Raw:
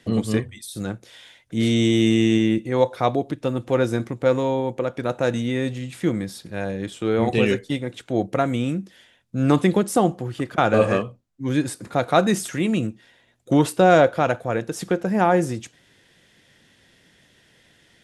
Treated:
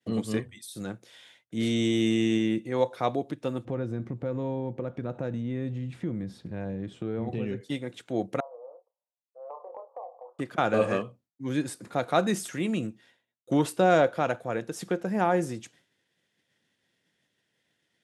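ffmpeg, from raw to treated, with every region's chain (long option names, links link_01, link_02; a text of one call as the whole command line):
ffmpeg -i in.wav -filter_complex "[0:a]asettb=1/sr,asplit=3[link_01][link_02][link_03];[link_01]atrim=end=3.654[link_04];[link_02]atrim=start=3.65:end=7.61,asetpts=PTS-STARTPTS,afade=type=in:duration=0.004:curve=qsin,afade=type=out:start_time=3.956:duration=0.004:curve=qsin,aemphasis=mode=reproduction:type=riaa,acompressor=threshold=-23dB:ratio=3:attack=3.2:release=140:knee=1:detection=peak[link_05];[link_03]atrim=start=7.606[link_06];[link_04][link_05]acrossfade=duration=0.004:curve1=hsin:curve2=qsin[link_07];[link_07][link_06]acrossfade=duration=0.004:curve1=qsin:curve2=hsin,asettb=1/sr,asplit=3[link_08][link_09][link_10];[link_08]atrim=end=8.404[link_11];[link_09]atrim=start=8.4:end=10.39,asetpts=PTS-STARTPTS,afade=type=in:duration=0.004:curve=qsin,afade=type=out:start_time=1.986:duration=0.004:curve=qsin,asuperpass=centerf=730:order=12:qfactor=1.2,asplit=2[link_12][link_13];[link_13]adelay=28,volume=-7dB[link_14];[link_12][link_14]amix=inputs=2:normalize=0,atrim=end_sample=87759,acompressor=threshold=-32dB:ratio=4:attack=3.2:release=140:knee=1:detection=peak[link_15];[link_10]atrim=start=10.386[link_16];[link_11][link_15]acrossfade=duration=0.004:curve1=hsin:curve2=qsin[link_17];[link_17][link_16]acrossfade=duration=0.004:curve1=qsin:curve2=hsin,agate=range=-33dB:threshold=-48dB:ratio=3:detection=peak,highpass=120,volume=-6.5dB" out.wav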